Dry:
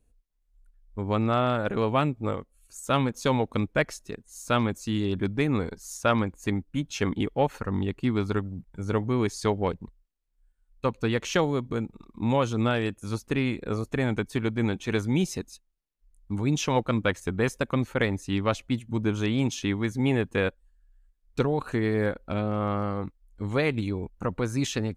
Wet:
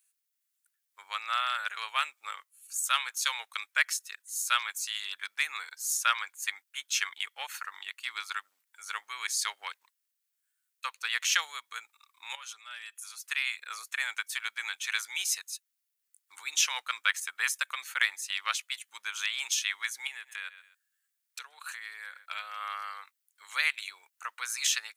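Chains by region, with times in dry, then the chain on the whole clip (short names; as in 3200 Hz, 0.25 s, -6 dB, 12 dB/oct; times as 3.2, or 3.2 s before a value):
12.35–13.25 comb 5 ms, depth 37% + compressor 5:1, threshold -36 dBFS
20.07–22.26 brick-wall FIR high-pass 260 Hz + feedback echo 0.129 s, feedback 31%, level -24 dB + compressor 4:1, threshold -34 dBFS
whole clip: HPF 1400 Hz 24 dB/oct; high shelf 7400 Hz +11.5 dB; gain +3.5 dB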